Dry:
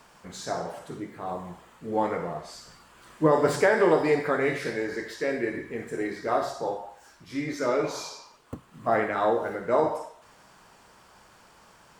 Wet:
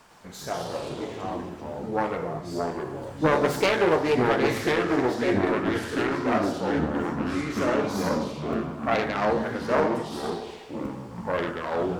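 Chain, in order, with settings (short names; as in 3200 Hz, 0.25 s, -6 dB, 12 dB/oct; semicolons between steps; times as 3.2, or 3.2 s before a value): self-modulated delay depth 0.39 ms; echoes that change speed 0.104 s, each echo -4 st, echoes 3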